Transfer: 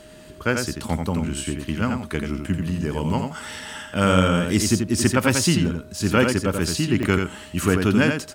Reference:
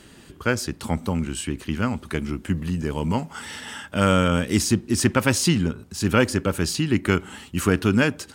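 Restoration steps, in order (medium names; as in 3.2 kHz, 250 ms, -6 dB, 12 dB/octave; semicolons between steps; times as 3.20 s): band-stop 620 Hz, Q 30; interpolate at 3.10/3.73/5.65/7.03 s, 1.8 ms; expander -31 dBFS, range -21 dB; inverse comb 86 ms -5.5 dB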